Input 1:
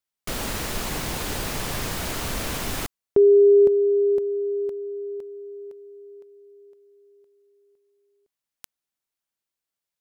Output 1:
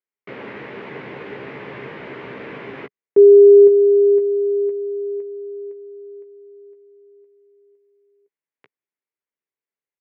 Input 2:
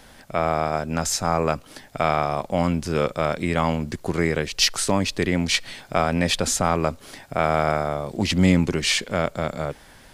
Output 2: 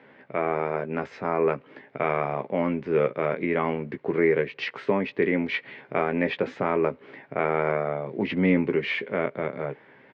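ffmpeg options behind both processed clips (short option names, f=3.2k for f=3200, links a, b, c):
-filter_complex "[0:a]highpass=f=140:w=0.5412,highpass=f=140:w=1.3066,equalizer=f=190:t=q:w=4:g=-4,equalizer=f=420:t=q:w=4:g=8,equalizer=f=720:t=q:w=4:g=-5,equalizer=f=1.3k:t=q:w=4:g=-4,equalizer=f=2.1k:t=q:w=4:g=4,lowpass=f=2.4k:w=0.5412,lowpass=f=2.4k:w=1.3066,asplit=2[a][b];[b]adelay=15,volume=-8dB[c];[a][c]amix=inputs=2:normalize=0,volume=-3dB"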